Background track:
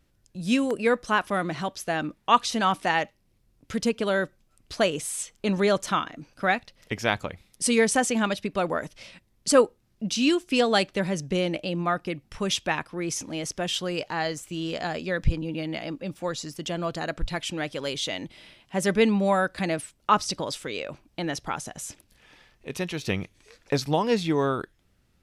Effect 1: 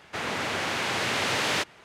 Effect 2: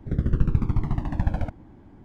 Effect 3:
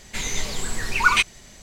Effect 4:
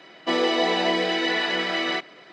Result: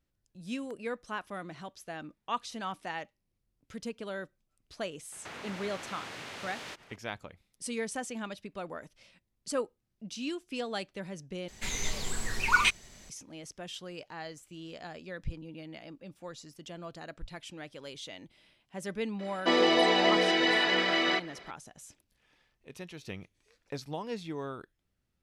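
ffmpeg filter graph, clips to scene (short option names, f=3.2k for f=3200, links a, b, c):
-filter_complex "[0:a]volume=-14dB[a];[1:a]acompressor=threshold=-36dB:ratio=6:attack=3.2:release=140:knee=1:detection=peak[b];[a]asplit=2[c][d];[c]atrim=end=11.484[e];[3:a]atrim=end=1.62,asetpts=PTS-STARTPTS,volume=-6.5dB[f];[d]atrim=start=13.096[g];[b]atrim=end=1.84,asetpts=PTS-STARTPTS,volume=-4.5dB,afade=t=in:d=0.004:c=hsin,afade=t=out:st=1.836:d=0.004:c=hsin,adelay=5120[h];[4:a]atrim=end=2.32,asetpts=PTS-STARTPTS,volume=-2dB,afade=t=in:d=0.004:c=hsin,afade=t=out:st=2.316:d=0.004:c=hsin,adelay=19190[i];[e][f]acrossfade=d=0.004:c1=hsin:c2=hsin[j];[j][g]acrossfade=d=0.004:c1=hsin:c2=hsin[k];[k][h][i]amix=inputs=3:normalize=0"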